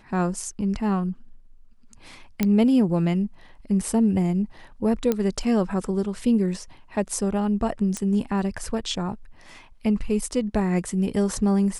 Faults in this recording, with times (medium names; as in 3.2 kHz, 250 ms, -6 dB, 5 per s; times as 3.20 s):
2.43 s: pop -8 dBFS
5.12 s: pop -10 dBFS
7.97 s: pop -15 dBFS